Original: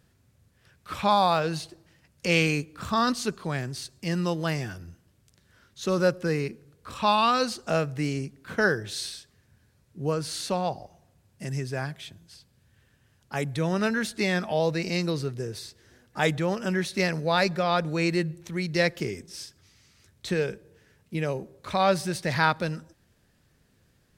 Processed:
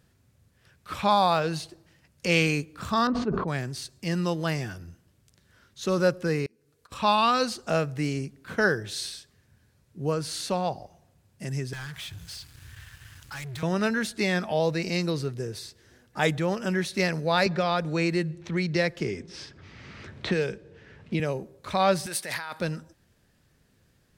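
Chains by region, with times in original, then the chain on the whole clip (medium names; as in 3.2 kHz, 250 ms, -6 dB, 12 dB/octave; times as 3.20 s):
3.07–3.48 s: low-pass 1 kHz + decay stretcher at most 36 dB/s
6.46–6.92 s: tone controls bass -7 dB, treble +5 dB + slow attack 466 ms + comb of notches 180 Hz
11.73–13.63 s: Chebyshev band-stop 100–1300 Hz + compression 2:1, threshold -56 dBFS + waveshaping leveller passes 5
17.46–21.20 s: level-controlled noise filter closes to 2.6 kHz, open at -19.5 dBFS + three bands compressed up and down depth 70%
22.06–22.60 s: resonant high shelf 7.8 kHz +6 dB, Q 1.5 + compressor with a negative ratio -29 dBFS + high-pass 990 Hz 6 dB/octave
whole clip: none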